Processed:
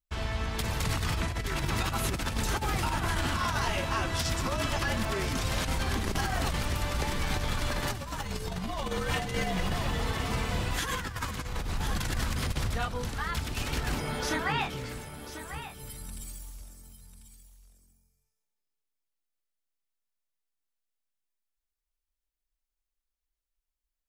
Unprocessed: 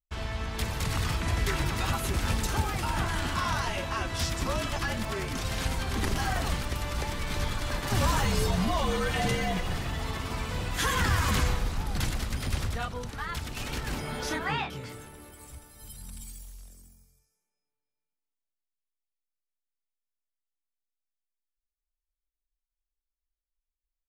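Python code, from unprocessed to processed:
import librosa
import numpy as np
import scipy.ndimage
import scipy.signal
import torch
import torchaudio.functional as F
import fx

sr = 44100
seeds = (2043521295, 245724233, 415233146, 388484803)

y = x + 10.0 ** (-12.0 / 20.0) * np.pad(x, (int(1043 * sr / 1000.0), 0))[:len(x)]
y = fx.over_compress(y, sr, threshold_db=-29.0, ratio=-0.5)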